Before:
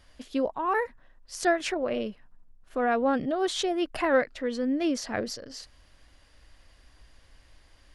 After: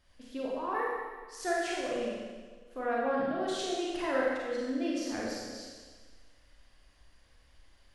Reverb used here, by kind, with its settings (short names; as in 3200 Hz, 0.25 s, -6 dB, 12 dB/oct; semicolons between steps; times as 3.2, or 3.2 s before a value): Schroeder reverb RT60 1.5 s, combs from 31 ms, DRR -5 dB; gain -11 dB